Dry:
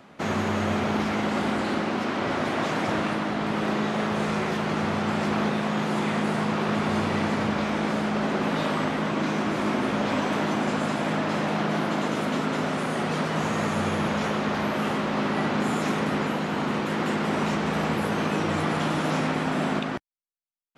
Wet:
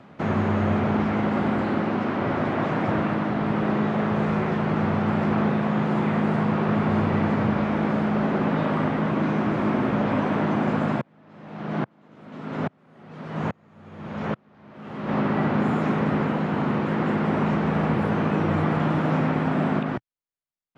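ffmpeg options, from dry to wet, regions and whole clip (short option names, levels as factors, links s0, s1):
-filter_complex "[0:a]asettb=1/sr,asplit=3[s0][s1][s2];[s0]atrim=end=11.014[s3];[s1]atrim=start=11.01:end=15.09,asetpts=PTS-STARTPTS,afade=t=in:d=0.004:c=qsin,afade=t=out:st=4.076:d=0.004:c=qsin,highshelf=f=9800:g=-8.5,aeval=exprs='val(0)*pow(10,-39*if(lt(mod(-1.2*n/s,1),2*abs(-1.2)/1000),1-mod(-1.2*n/s,1)/(2*abs(-1.2)/1000),(mod(-1.2*n/s,1)-2*abs(-1.2)/1000)/(1-2*abs(-1.2)/1000))/20)':c=same[s4];[s2]atrim=start=15.086[s5];[s3][s4]acrossfade=d=0.004:c1=hsin:c2=qsin[s6];[s6][s5]acrossfade=d=0.004:c1=qsin:c2=hsin,aemphasis=mode=reproduction:type=75kf,acrossover=split=2800[s7][s8];[s8]acompressor=threshold=0.00251:ratio=4:attack=1:release=60[s9];[s7][s9]amix=inputs=2:normalize=0,equalizer=f=120:t=o:w=1.2:g=6.5,volume=1.19"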